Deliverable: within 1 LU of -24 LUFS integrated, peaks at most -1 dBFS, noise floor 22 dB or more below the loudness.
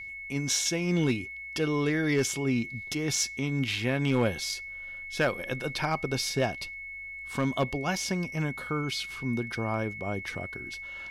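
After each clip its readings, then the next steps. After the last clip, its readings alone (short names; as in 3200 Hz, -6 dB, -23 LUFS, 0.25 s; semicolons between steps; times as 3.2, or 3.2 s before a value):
clipped 0.3%; flat tops at -18.0 dBFS; steady tone 2200 Hz; tone level -38 dBFS; loudness -30.0 LUFS; peak -18.0 dBFS; loudness target -24.0 LUFS
-> clip repair -18 dBFS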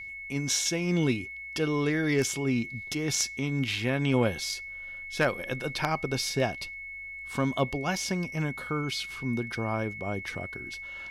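clipped 0.0%; steady tone 2200 Hz; tone level -38 dBFS
-> notch 2200 Hz, Q 30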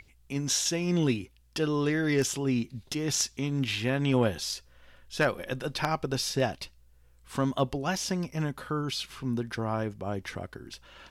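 steady tone none; loudness -30.0 LUFS; peak -9.5 dBFS; loudness target -24.0 LUFS
-> gain +6 dB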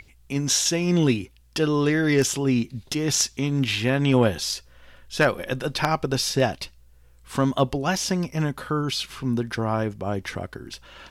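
loudness -24.0 LUFS; peak -3.5 dBFS; noise floor -54 dBFS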